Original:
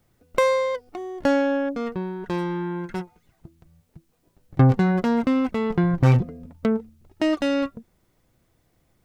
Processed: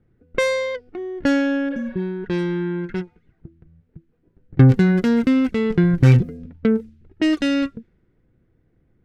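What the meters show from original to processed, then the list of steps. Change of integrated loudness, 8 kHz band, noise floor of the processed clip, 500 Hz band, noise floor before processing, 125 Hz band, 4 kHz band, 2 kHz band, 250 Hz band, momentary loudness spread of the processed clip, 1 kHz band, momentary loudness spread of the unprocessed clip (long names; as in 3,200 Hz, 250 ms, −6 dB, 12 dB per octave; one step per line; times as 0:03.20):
+3.5 dB, can't be measured, −64 dBFS, +0.5 dB, −67 dBFS, +4.5 dB, +4.0 dB, +4.0 dB, +4.5 dB, 14 LU, −5.5 dB, 13 LU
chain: healed spectral selection 0:01.73–0:01.99, 410–5,400 Hz both
flat-topped bell 830 Hz −11 dB 1.3 octaves
low-pass that shuts in the quiet parts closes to 1,200 Hz, open at −19.5 dBFS
level +4.5 dB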